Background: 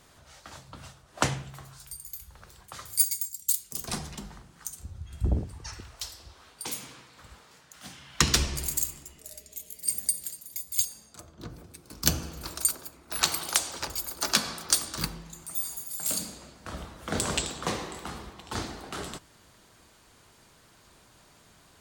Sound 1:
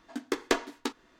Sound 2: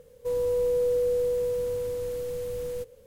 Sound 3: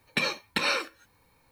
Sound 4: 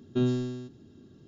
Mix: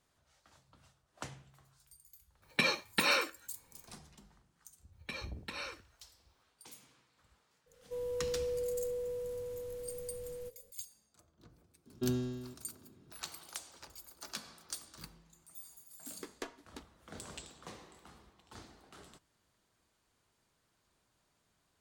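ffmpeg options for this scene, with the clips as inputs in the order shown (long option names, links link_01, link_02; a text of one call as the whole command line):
ffmpeg -i bed.wav -i cue0.wav -i cue1.wav -i cue2.wav -i cue3.wav -filter_complex "[3:a]asplit=2[link_01][link_02];[0:a]volume=-19dB[link_03];[1:a]equalizer=frequency=11000:width_type=o:width=0.77:gain=6.5[link_04];[link_01]atrim=end=1.51,asetpts=PTS-STARTPTS,volume=-2.5dB,afade=type=in:duration=0.004:curve=hsin,afade=type=out:start_time=1.506:duration=0.004:curve=hsin,adelay=2420[link_05];[link_02]atrim=end=1.51,asetpts=PTS-STARTPTS,volume=-16dB,afade=type=in:duration=0.004:curve=hsin,afade=type=out:start_time=1.506:duration=0.004:curve=hsin,adelay=4920[link_06];[2:a]atrim=end=3.06,asetpts=PTS-STARTPTS,volume=-11.5dB,afade=type=in:duration=0.02,afade=type=out:start_time=3.04:duration=0.02,adelay=7660[link_07];[4:a]atrim=end=1.27,asetpts=PTS-STARTPTS,volume=-7.5dB,afade=type=in:duration=0.004:curve=hsin,afade=type=out:start_time=1.266:duration=0.004:curve=hsin,adelay=523026S[link_08];[link_04]atrim=end=1.19,asetpts=PTS-STARTPTS,volume=-17.5dB,afade=type=in:duration=0.004:curve=hsin,afade=type=out:start_time=1.186:duration=0.004:curve=hsin,adelay=15910[link_09];[link_03][link_05][link_06][link_07][link_08][link_09]amix=inputs=6:normalize=0" out.wav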